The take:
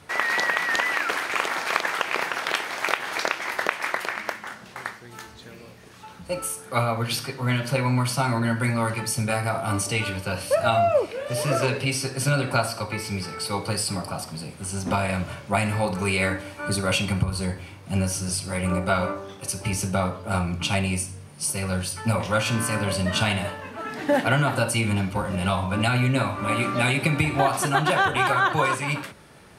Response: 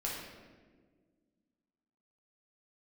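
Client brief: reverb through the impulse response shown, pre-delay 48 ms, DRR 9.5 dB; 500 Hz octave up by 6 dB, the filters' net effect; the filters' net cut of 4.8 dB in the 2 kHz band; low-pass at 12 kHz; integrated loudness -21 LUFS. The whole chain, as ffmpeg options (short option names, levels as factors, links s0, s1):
-filter_complex "[0:a]lowpass=12000,equalizer=f=500:t=o:g=8,equalizer=f=2000:t=o:g=-7,asplit=2[s0][s1];[1:a]atrim=start_sample=2205,adelay=48[s2];[s1][s2]afir=irnorm=-1:irlink=0,volume=0.237[s3];[s0][s3]amix=inputs=2:normalize=0,volume=1.19"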